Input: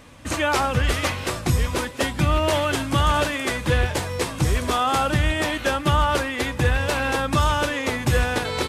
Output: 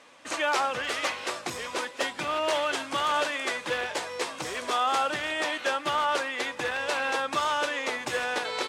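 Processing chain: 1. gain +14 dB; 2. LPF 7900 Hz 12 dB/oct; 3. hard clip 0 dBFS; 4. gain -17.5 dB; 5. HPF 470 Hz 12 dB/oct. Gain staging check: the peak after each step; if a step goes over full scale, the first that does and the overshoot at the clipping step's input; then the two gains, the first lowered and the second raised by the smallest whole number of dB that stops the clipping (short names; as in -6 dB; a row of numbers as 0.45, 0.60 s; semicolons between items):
+4.5, +4.5, 0.0, -17.5, -14.0 dBFS; step 1, 4.5 dB; step 1 +9 dB, step 4 -12.5 dB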